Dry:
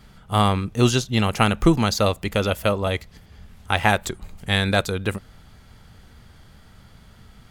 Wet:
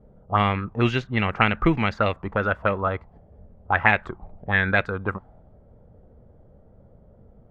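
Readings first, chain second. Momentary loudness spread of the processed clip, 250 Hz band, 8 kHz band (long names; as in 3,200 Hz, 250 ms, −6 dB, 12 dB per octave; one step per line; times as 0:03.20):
10 LU, −4.0 dB, below −25 dB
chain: pitch vibrato 2.1 Hz 41 cents
envelope-controlled low-pass 520–2,200 Hz up, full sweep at −15 dBFS
level −4 dB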